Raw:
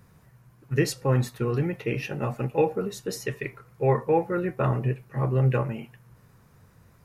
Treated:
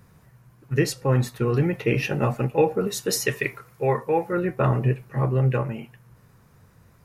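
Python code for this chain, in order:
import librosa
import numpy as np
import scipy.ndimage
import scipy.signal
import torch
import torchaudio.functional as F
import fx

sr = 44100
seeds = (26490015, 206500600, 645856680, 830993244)

y = fx.rider(x, sr, range_db=4, speed_s=0.5)
y = fx.tilt_eq(y, sr, slope=1.5, at=(2.87, 4.33))
y = F.gain(torch.from_numpy(y), 3.5).numpy()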